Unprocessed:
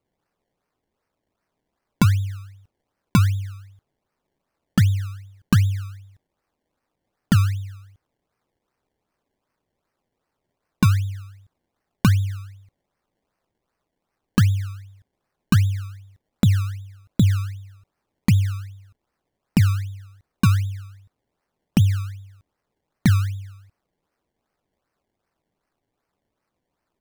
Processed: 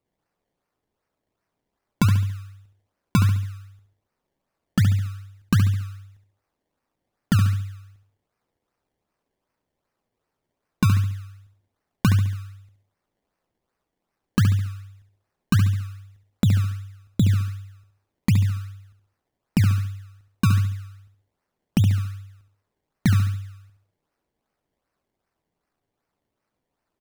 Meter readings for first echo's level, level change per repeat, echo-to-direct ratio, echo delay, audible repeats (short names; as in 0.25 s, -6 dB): -8.0 dB, -8.0 dB, -7.5 dB, 70 ms, 4